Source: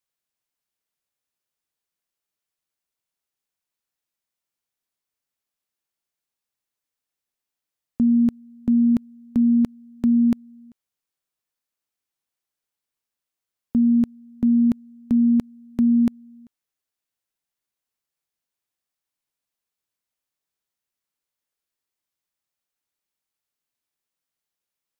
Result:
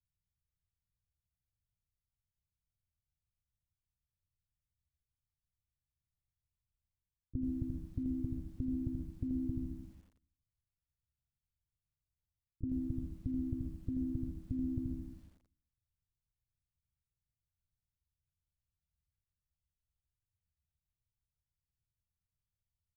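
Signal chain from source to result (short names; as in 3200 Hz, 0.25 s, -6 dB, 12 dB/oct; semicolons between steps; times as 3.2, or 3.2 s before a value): inverse Chebyshev low-pass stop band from 630 Hz, stop band 80 dB; speed mistake 44.1 kHz file played as 48 kHz; on a send: feedback echo 82 ms, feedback 48%, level -10.5 dB; on the sum: harmoniser +4 st -16 dB; reverse; compressor 6:1, threshold -52 dBFS, peak gain reduction 17.5 dB; reverse; non-linear reverb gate 0.17 s rising, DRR 4 dB; lo-fi delay 87 ms, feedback 55%, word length 13-bit, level -12 dB; gain +16.5 dB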